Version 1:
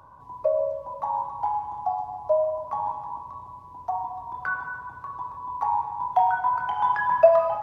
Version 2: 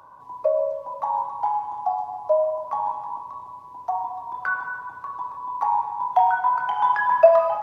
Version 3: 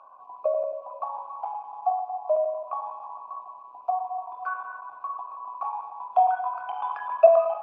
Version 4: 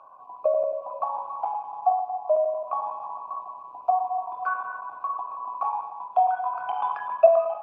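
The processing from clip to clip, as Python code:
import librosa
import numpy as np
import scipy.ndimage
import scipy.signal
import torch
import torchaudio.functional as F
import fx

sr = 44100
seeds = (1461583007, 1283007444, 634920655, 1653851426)

y1 = fx.highpass(x, sr, hz=390.0, slope=6)
y1 = y1 * librosa.db_to_amplitude(3.5)
y2 = fx.chopper(y1, sr, hz=11.0, depth_pct=65, duty_pct=90)
y2 = fx.dynamic_eq(y2, sr, hz=820.0, q=1.8, threshold_db=-34.0, ratio=4.0, max_db=-7)
y2 = fx.vowel_filter(y2, sr, vowel='a')
y2 = y2 * librosa.db_to_amplitude(7.5)
y3 = fx.hum_notches(y2, sr, base_hz=60, count=2)
y3 = fx.rider(y3, sr, range_db=3, speed_s=0.5)
y3 = fx.low_shelf(y3, sr, hz=320.0, db=9.0)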